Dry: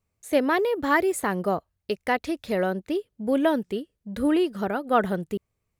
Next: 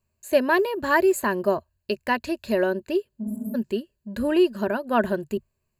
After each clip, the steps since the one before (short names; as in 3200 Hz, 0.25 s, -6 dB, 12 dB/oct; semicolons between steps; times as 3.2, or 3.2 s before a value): ripple EQ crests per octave 1.4, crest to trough 11 dB; spectral repair 3.26–3.52, 200–7000 Hz before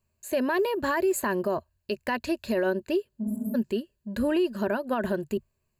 limiter -18 dBFS, peak gain reduction 10.5 dB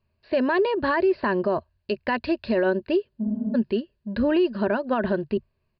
downsampling 11025 Hz; air absorption 77 m; gain +4 dB